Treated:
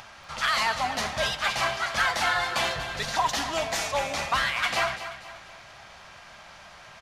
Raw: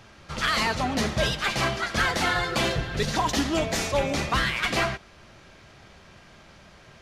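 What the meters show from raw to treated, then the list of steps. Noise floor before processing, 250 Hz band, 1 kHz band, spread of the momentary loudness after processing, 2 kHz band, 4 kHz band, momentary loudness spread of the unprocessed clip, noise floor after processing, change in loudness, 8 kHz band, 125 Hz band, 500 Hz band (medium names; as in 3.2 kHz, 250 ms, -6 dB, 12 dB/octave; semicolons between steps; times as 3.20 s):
-52 dBFS, -12.5 dB, +1.0 dB, 15 LU, 0.0 dB, -0.5 dB, 4 LU, -48 dBFS, -1.0 dB, -0.5 dB, -11.0 dB, -3.5 dB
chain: resonant low shelf 540 Hz -10 dB, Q 1.5; upward compressor, threshold -39 dBFS; feedback delay 240 ms, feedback 41%, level -11.5 dB; trim -1 dB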